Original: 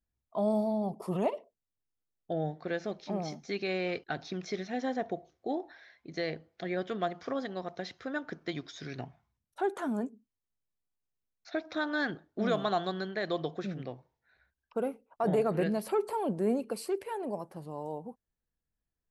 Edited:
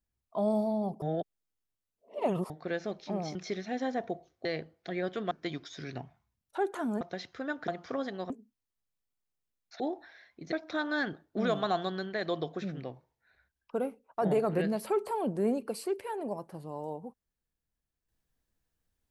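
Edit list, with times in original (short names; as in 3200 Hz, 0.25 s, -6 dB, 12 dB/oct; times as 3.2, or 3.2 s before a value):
1.02–2.5 reverse
3.35–4.37 cut
5.47–6.19 move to 11.54
7.05–7.67 swap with 8.34–10.04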